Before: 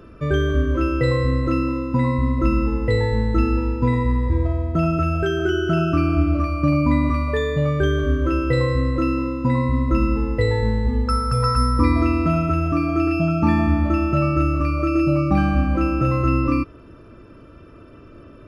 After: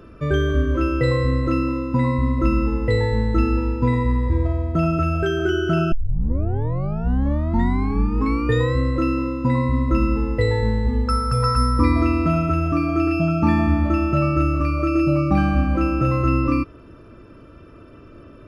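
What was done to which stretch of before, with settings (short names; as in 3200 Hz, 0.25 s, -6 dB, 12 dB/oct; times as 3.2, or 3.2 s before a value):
5.92 tape start 2.84 s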